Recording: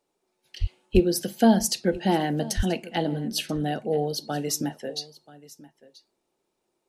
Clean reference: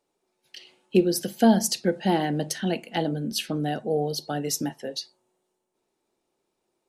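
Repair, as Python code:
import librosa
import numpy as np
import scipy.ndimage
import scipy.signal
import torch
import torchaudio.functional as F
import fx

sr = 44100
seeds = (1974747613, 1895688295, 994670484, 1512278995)

y = fx.fix_deplosive(x, sr, at_s=(0.6, 0.93, 2.56))
y = fx.fix_echo_inverse(y, sr, delay_ms=983, level_db=-20.0)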